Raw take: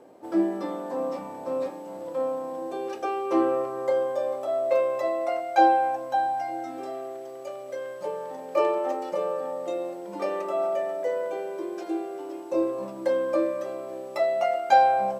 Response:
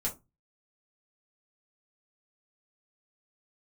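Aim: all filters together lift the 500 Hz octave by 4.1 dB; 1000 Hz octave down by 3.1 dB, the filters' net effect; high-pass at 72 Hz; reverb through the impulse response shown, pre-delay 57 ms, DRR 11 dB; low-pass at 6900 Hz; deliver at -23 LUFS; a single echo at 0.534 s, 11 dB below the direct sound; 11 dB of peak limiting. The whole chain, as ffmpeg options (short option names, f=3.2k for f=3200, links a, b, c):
-filter_complex "[0:a]highpass=72,lowpass=6.9k,equalizer=f=500:t=o:g=7.5,equalizer=f=1k:t=o:g=-9,alimiter=limit=-18dB:level=0:latency=1,aecho=1:1:534:0.282,asplit=2[a][b];[1:a]atrim=start_sample=2205,adelay=57[c];[b][c]afir=irnorm=-1:irlink=0,volume=-14.5dB[d];[a][d]amix=inputs=2:normalize=0,volume=4dB"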